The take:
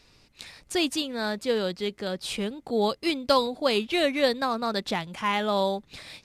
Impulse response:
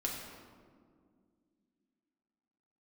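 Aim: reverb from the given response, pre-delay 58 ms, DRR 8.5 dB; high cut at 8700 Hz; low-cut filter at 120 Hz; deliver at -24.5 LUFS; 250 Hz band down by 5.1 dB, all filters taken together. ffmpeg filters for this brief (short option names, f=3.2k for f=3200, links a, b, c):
-filter_complex "[0:a]highpass=120,lowpass=8.7k,equalizer=f=250:t=o:g=-6.5,asplit=2[a][b];[1:a]atrim=start_sample=2205,adelay=58[c];[b][c]afir=irnorm=-1:irlink=0,volume=-11.5dB[d];[a][d]amix=inputs=2:normalize=0,volume=3dB"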